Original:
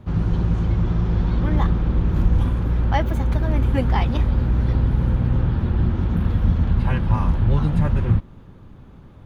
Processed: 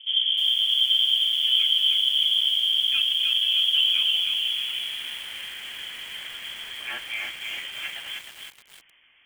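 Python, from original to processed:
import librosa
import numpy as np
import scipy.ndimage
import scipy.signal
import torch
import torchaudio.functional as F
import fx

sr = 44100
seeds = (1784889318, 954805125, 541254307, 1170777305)

y = fx.rider(x, sr, range_db=10, speed_s=2.0)
y = fx.filter_sweep_bandpass(y, sr, from_hz=240.0, to_hz=1500.0, start_s=3.94, end_s=5.07, q=0.87)
y = fx.rev_schroeder(y, sr, rt60_s=0.41, comb_ms=26, drr_db=13.5)
y = fx.freq_invert(y, sr, carrier_hz=3300)
y = fx.echo_crushed(y, sr, ms=311, feedback_pct=55, bits=7, wet_db=-3)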